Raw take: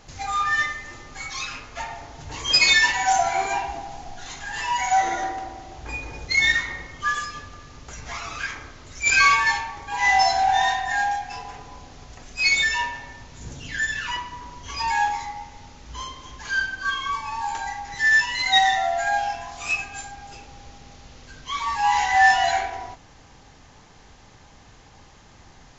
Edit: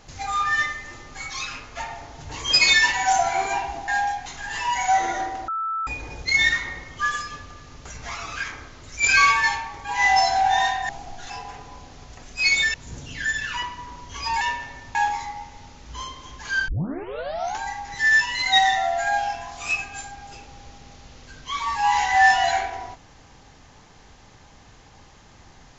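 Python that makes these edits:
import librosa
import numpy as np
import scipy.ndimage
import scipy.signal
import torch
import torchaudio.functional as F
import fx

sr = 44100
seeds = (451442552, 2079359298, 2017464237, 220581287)

y = fx.edit(x, sr, fx.swap(start_s=3.88, length_s=0.41, other_s=10.92, other_length_s=0.38),
    fx.bleep(start_s=5.51, length_s=0.39, hz=1320.0, db=-23.5),
    fx.move(start_s=12.74, length_s=0.54, to_s=14.95),
    fx.tape_start(start_s=16.68, length_s=0.92), tone=tone)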